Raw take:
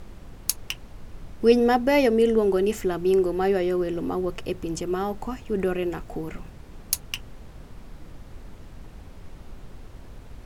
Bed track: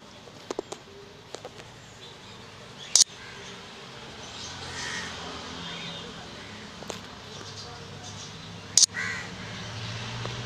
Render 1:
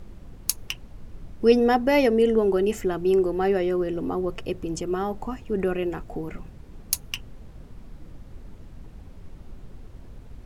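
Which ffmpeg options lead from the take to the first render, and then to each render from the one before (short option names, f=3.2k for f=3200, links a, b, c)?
-af "afftdn=nr=6:nf=-45"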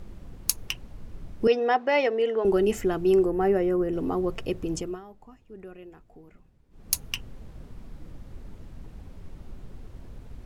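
-filter_complex "[0:a]asettb=1/sr,asplit=3[a][b][c];[a]atrim=end=1.474[d];[b]atrim=start=1.47:end=2.45,asetpts=PTS-STARTPTS,afade=t=in:d=0.004:c=qsin,afade=t=out:st=0.976:d=0.004:c=qsin,highpass=530,lowpass=3.8k[e];[c]atrim=start=2.446[f];[d][e]acrossfade=d=0.004:c1=hsin:c2=qsin[g];[g][f]acrossfade=d=0.004:c1=qsin:c2=hsin,asettb=1/sr,asplit=3[h][i][j];[h]atrim=end=3.254[k];[i]atrim=start=3.25:end=3.93,asetpts=PTS-STARTPTS,afade=t=in:d=0.004:c=qsin,afade=t=out:st=0.676:d=0.004:c=qsin,equalizer=f=4k:t=o:w=1.3:g=-14[l];[j]atrim=start=3.926[m];[k][l]acrossfade=d=0.004:c1=hsin:c2=qsin[n];[n][m]acrossfade=d=0.004:c1=qsin:c2=hsin,asplit=3[o][p][q];[o]atrim=end=5.01,asetpts=PTS-STARTPTS,afade=t=out:st=4.76:d=0.25:silence=0.11885[r];[p]atrim=start=5.01:end=6.7,asetpts=PTS-STARTPTS,volume=-18.5dB[s];[q]atrim=start=6.7,asetpts=PTS-STARTPTS,afade=t=in:d=0.25:silence=0.11885[t];[r][s][t]concat=n=3:v=0:a=1"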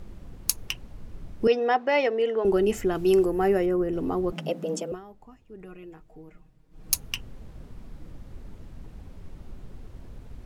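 -filter_complex "[0:a]asettb=1/sr,asplit=3[a][b][c];[a]atrim=end=2.954[d];[b]atrim=start=2.95:end=3.66,asetpts=PTS-STARTPTS,afade=t=in:d=0.004:c=qsin,afade=t=out:st=0.706:d=0.004:c=qsin,highshelf=f=2.4k:g=8.5[e];[c]atrim=start=3.656[f];[d][e]acrossfade=d=0.004:c1=hsin:c2=qsin[g];[g][f]acrossfade=d=0.004:c1=qsin:c2=hsin,asettb=1/sr,asplit=3[h][i][j];[h]atrim=end=4.324[k];[i]atrim=start=4.32:end=4.92,asetpts=PTS-STARTPTS,afade=t=in:d=0.004:c=qsin,afade=t=out:st=0.596:d=0.004:c=qsin,afreqshift=150[l];[j]atrim=start=4.916[m];[k][l]acrossfade=d=0.004:c1=hsin:c2=qsin[n];[n][m]acrossfade=d=0.004:c1=qsin:c2=hsin,asettb=1/sr,asplit=3[o][p][q];[o]atrim=end=5.604[r];[p]atrim=start=5.6:end=6.94,asetpts=PTS-STARTPTS,afade=t=in:d=0.004:c=qsin,afade=t=out:st=1.336:d=0.004:c=qsin,aecho=1:1:6.4:0.73,atrim=end_sample=59094[s];[q]atrim=start=6.936[t];[r][s]acrossfade=d=0.004:c1=hsin:c2=qsin[u];[u][t]acrossfade=d=0.004:c1=qsin:c2=hsin"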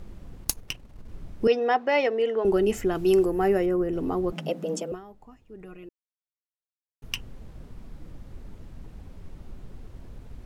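-filter_complex "[0:a]asettb=1/sr,asplit=3[a][b][c];[a]atrim=end=0.444[d];[b]atrim=start=0.44:end=1.09,asetpts=PTS-STARTPTS,afade=t=in:d=0.004:c=qsin,afade=t=out:st=0.646:d=0.004:c=qsin,aeval=exprs='if(lt(val(0),0),0.447*val(0),val(0))':c=same[e];[c]atrim=start=1.086[f];[d][e]acrossfade=d=0.004:c1=hsin:c2=qsin[g];[g][f]acrossfade=d=0.004:c1=qsin:c2=hsin,asplit=3[h][i][j];[h]atrim=end=5.89,asetpts=PTS-STARTPTS,afade=t=out:st=5.886:d=0.004:c=hsin[k];[i]atrim=start=5.89:end=7.02,asetpts=PTS-STARTPTS,volume=0[l];[j]atrim=start=7.02,asetpts=PTS-STARTPTS,afade=t=in:d=0.004:c=hsin[m];[k][l][m]concat=n=3:v=0:a=1"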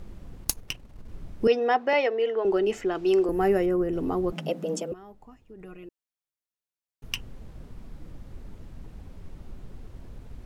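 -filter_complex "[0:a]asettb=1/sr,asplit=3[a][b][c];[a]atrim=end=1.934[d];[b]atrim=start=1.93:end=3.29,asetpts=PTS-STARTPTS,afade=t=in:d=0.004:c=qsin,afade=t=out:st=1.356:d=0.004:c=qsin,acrossover=split=270 6600:gain=0.224 1 0.141[e][f][g];[e][f][g]amix=inputs=3:normalize=0[h];[c]atrim=start=3.286[i];[d][h]acrossfade=d=0.004:c1=hsin:c2=qsin[j];[j][i]acrossfade=d=0.004:c1=qsin:c2=hsin,asettb=1/sr,asplit=3[k][l][m];[k]atrim=end=4.934[n];[l]atrim=start=4.93:end=5.61,asetpts=PTS-STARTPTS,afade=t=in:d=0.004:c=qsin,afade=t=out:st=0.676:d=0.004:c=qsin,acompressor=threshold=-41dB:ratio=6:attack=3.2:release=140:knee=1:detection=peak[o];[m]atrim=start=5.606[p];[n][o]acrossfade=d=0.004:c1=hsin:c2=qsin[q];[q][p]acrossfade=d=0.004:c1=qsin:c2=hsin"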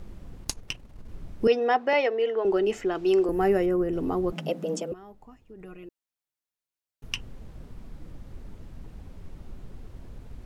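-filter_complex "[0:a]acrossover=split=9000[a][b];[b]acompressor=threshold=-54dB:ratio=4:attack=1:release=60[c];[a][c]amix=inputs=2:normalize=0"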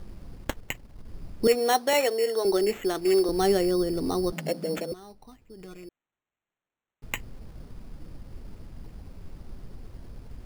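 -af "acrusher=samples=9:mix=1:aa=0.000001"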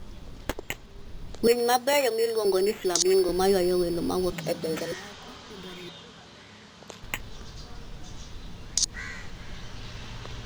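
-filter_complex "[1:a]volume=-7dB[a];[0:a][a]amix=inputs=2:normalize=0"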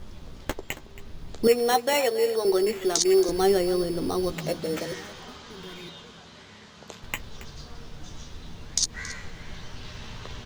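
-filter_complex "[0:a]asplit=2[a][b];[b]adelay=13,volume=-10.5dB[c];[a][c]amix=inputs=2:normalize=0,aecho=1:1:275:0.15"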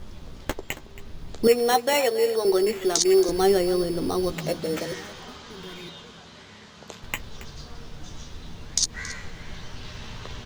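-af "volume=1.5dB"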